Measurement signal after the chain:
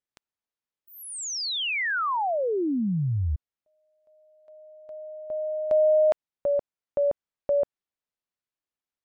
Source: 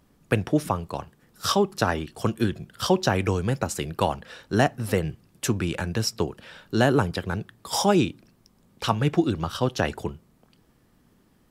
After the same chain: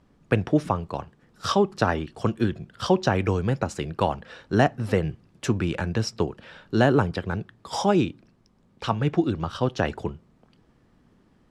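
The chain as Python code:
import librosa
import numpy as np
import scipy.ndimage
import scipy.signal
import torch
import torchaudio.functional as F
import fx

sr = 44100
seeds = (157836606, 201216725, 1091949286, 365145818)

p1 = scipy.signal.sosfilt(scipy.signal.butter(2, 7600.0, 'lowpass', fs=sr, output='sos'), x)
p2 = fx.high_shelf(p1, sr, hz=3500.0, db=-7.5)
p3 = fx.rider(p2, sr, range_db=10, speed_s=2.0)
p4 = p2 + (p3 * 10.0 ** (0.5 / 20.0))
y = p4 * 10.0 ** (-6.0 / 20.0)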